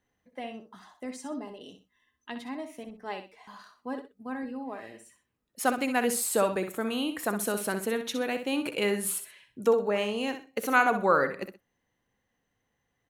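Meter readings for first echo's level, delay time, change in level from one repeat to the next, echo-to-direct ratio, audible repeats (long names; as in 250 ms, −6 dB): −9.0 dB, 63 ms, −12.0 dB, −8.5 dB, 2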